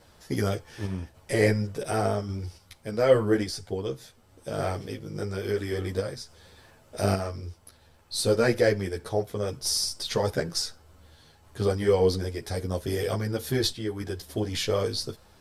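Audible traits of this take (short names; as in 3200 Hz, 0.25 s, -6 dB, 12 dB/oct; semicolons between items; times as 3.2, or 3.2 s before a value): random-step tremolo 3.5 Hz; a shimmering, thickened sound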